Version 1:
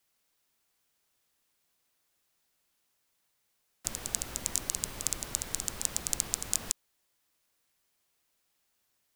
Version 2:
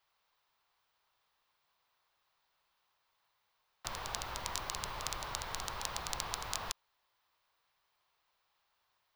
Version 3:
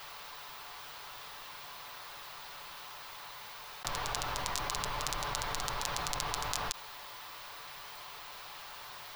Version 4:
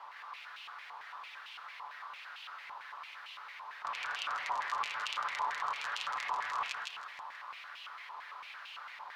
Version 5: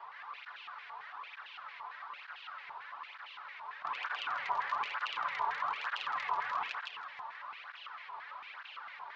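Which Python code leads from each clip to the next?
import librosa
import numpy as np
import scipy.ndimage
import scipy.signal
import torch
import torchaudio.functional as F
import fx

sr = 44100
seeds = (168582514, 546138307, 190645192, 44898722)

y1 = fx.graphic_eq_10(x, sr, hz=(250, 1000, 4000, 8000, 16000), db=(-10, 11, 5, -11, -9))
y1 = F.gain(torch.from_numpy(y1), -1.0).numpy()
y2 = y1 + 0.39 * np.pad(y1, (int(6.9 * sr / 1000.0), 0))[:len(y1)]
y2 = fx.env_flatten(y2, sr, amount_pct=70)
y3 = fx.echo_feedback(y2, sr, ms=160, feedback_pct=52, wet_db=-3.5)
y3 = fx.filter_held_bandpass(y3, sr, hz=8.9, low_hz=970.0, high_hz=2800.0)
y3 = F.gain(torch.from_numpy(y3), 6.5).numpy()
y4 = scipy.ndimage.gaussian_filter1d(y3, 2.0, mode='constant')
y4 = fx.flanger_cancel(y4, sr, hz=1.1, depth_ms=4.0)
y4 = F.gain(torch.from_numpy(y4), 4.5).numpy()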